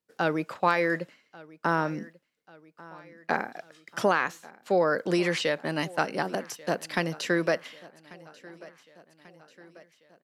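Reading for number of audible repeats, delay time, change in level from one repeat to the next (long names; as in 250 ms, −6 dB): 3, 1,140 ms, −5.0 dB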